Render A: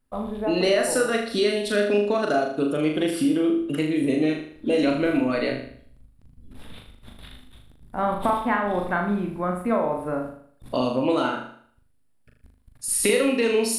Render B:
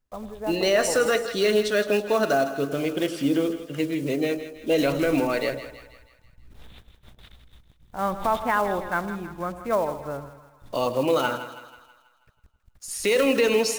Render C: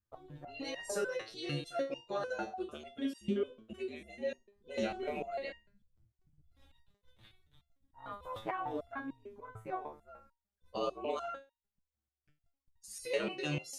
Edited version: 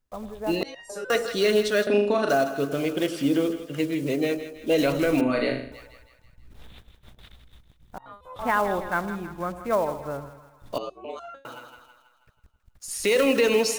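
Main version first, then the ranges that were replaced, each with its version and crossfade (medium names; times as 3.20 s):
B
0.63–1.10 s: from C
1.87–2.29 s: from A
5.21–5.72 s: from A
7.98–8.39 s: from C
10.78–11.45 s: from C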